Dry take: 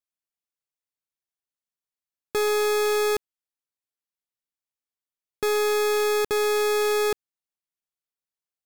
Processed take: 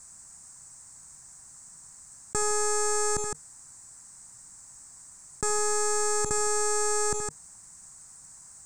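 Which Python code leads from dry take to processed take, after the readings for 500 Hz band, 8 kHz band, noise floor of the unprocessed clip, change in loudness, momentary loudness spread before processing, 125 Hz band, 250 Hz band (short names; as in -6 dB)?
-8.0 dB, +9.5 dB, under -85 dBFS, -3.5 dB, 7 LU, n/a, -4.5 dB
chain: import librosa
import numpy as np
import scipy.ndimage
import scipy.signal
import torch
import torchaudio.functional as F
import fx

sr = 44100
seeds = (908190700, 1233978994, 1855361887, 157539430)

p1 = fx.curve_eq(x, sr, hz=(150.0, 460.0, 920.0, 1800.0, 3200.0, 8100.0, 12000.0), db=(0, -17, -6, -11, -28, 10, -26))
p2 = p1 + fx.echo_multitap(p1, sr, ms=(74, 160), db=(-17.0, -18.5), dry=0)
p3 = fx.env_flatten(p2, sr, amount_pct=70)
y = p3 * 10.0 ** (6.0 / 20.0)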